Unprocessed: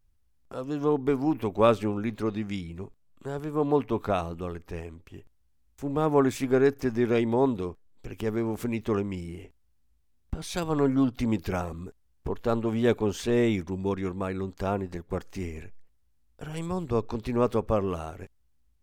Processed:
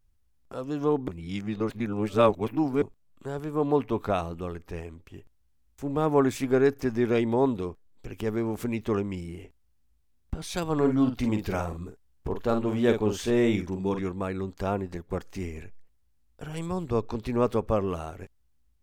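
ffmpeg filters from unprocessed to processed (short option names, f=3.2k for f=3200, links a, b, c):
-filter_complex "[0:a]asettb=1/sr,asplit=3[a][b][c];[a]atrim=end=10.764[d];[b]atrim=start=10.76:end=14.03,asetpts=PTS-STARTPTS,afade=t=in:d=0.004:c=qsin,afade=t=out:st=3.266:d=0.004:c=qsin,asplit=2[e][f];[f]adelay=47,volume=-7.5dB[g];[e][g]amix=inputs=2:normalize=0,atrim=end_sample=144207[h];[c]atrim=start=14.026[i];[d][h]acrossfade=d=0.004:c1=hsin:c2=qsin[j];[j][i]acrossfade=d=0.004:c1=qsin:c2=hsin,asplit=3[k][l][m];[k]atrim=end=1.082[n];[l]atrim=start=1.078:end=2.822,asetpts=PTS-STARTPTS,areverse[o];[m]atrim=start=2.818[p];[n][o]acrossfade=d=0.004:c1=hsin:c2=hsin[q];[q][p]acrossfade=d=0.004:c1=hsin:c2=hsin"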